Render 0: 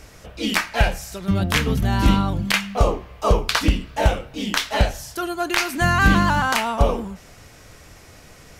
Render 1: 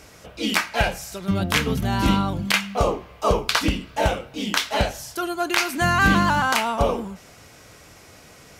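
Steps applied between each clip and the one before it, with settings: HPF 130 Hz 6 dB/oct; notch 1800 Hz, Q 21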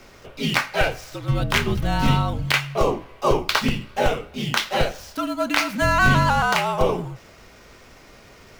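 median filter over 5 samples; frequency shift -58 Hz; gain +1 dB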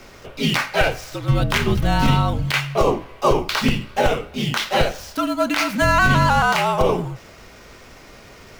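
limiter -10.5 dBFS, peak gain reduction 8.5 dB; gain +4 dB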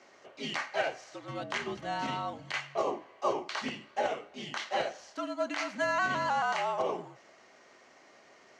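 speaker cabinet 430–6200 Hz, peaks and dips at 470 Hz -7 dB, 960 Hz -4 dB, 1400 Hz -7 dB, 2500 Hz -8 dB, 3600 Hz -9 dB, 5100 Hz -8 dB; gain -8 dB

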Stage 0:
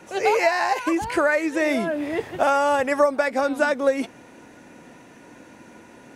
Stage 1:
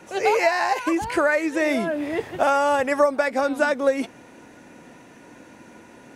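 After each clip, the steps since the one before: nothing audible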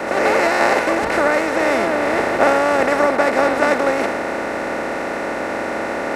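per-bin compression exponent 0.2; three-band expander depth 100%; gain -4 dB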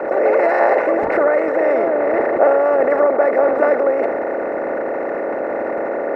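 formant sharpening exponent 2; gain +1.5 dB

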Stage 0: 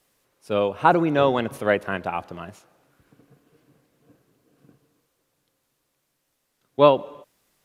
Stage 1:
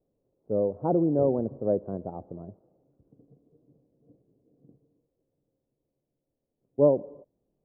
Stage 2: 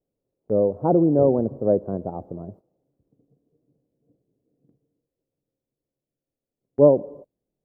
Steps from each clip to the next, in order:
inverse Chebyshev low-pass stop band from 3400 Hz, stop band 80 dB; gain -2 dB
gate -51 dBFS, range -12 dB; gain +6 dB

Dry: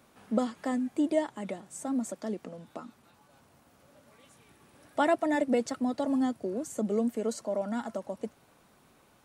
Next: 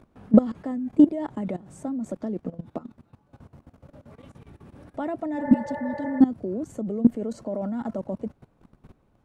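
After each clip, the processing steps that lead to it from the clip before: tilt -4 dB/oct; level quantiser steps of 18 dB; spectral repair 5.42–6.17, 340–2300 Hz before; gain +7.5 dB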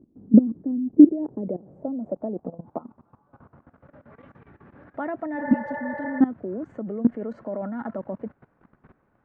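low shelf 90 Hz -11 dB; low-pass sweep 300 Hz -> 1700 Hz, 0.63–3.91; gain -1 dB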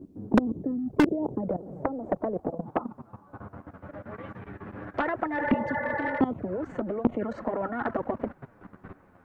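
envelope flanger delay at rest 11.6 ms, full sweep at -19.5 dBFS; hard clip -4 dBFS, distortion -28 dB; spectral compressor 2:1; gain -1 dB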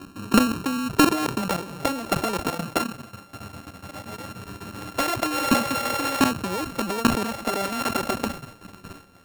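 sample sorter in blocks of 32 samples; sustainer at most 120 dB/s; gain +3.5 dB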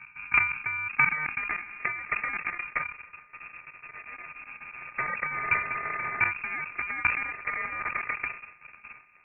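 inverted band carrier 2600 Hz; gain -5.5 dB

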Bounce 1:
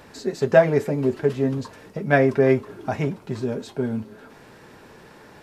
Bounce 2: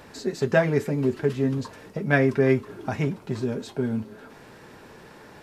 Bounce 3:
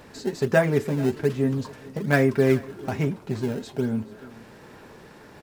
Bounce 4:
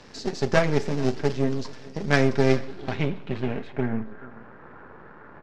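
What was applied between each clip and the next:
dynamic EQ 640 Hz, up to -7 dB, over -32 dBFS, Q 1.2
in parallel at -10.5 dB: decimation with a swept rate 22×, swing 160% 1.2 Hz; on the sum: echo 0.433 s -21.5 dB; gain -1.5 dB
half-wave gain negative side -12 dB; low-pass sweep 5500 Hz -> 1400 Hz, 2.45–4.34; Schroeder reverb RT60 0.67 s, combs from 32 ms, DRR 16.5 dB; gain +1.5 dB

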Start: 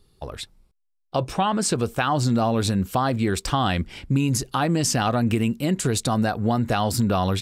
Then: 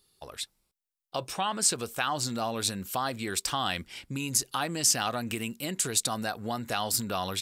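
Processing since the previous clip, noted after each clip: tilt +3 dB/oct; gain -7 dB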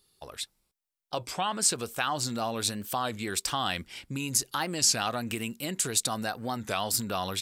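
record warp 33 1/3 rpm, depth 160 cents

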